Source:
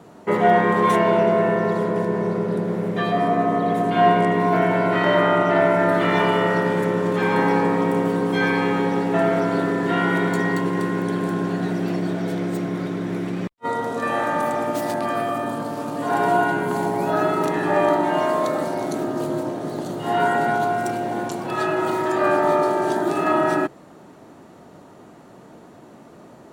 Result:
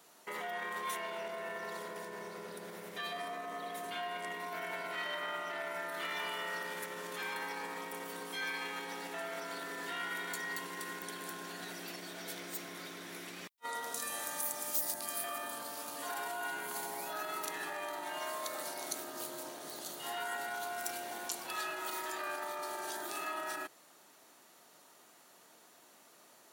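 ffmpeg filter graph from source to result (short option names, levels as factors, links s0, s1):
-filter_complex "[0:a]asettb=1/sr,asplit=3[s0][s1][s2];[s0]atrim=end=13.944[s3];[s1]atrim=start=13.94:end=15.24,asetpts=PTS-STARTPTS,afade=t=in:d=0.004:c=qsin,afade=t=out:st=1.296:d=0.004:c=qsin,bass=f=250:g=8,treble=f=4000:g=14,acrossover=split=840|1800[s4][s5][s6];[s4]acompressor=threshold=0.0501:ratio=4[s7];[s5]acompressor=threshold=0.0112:ratio=4[s8];[s6]acompressor=threshold=0.0112:ratio=4[s9];[s7][s8][s9]amix=inputs=3:normalize=0[s10];[s2]atrim=start=15.236[s11];[s3][s10]acrossfade=d=0.004:c1=hsin:c2=qsin[s12];[s12][s11]acrossfade=d=0.004:c1=qsin:c2=hsin,equalizer=f=7900:w=2.4:g=-4,alimiter=limit=0.15:level=0:latency=1,aderivative,volume=1.41"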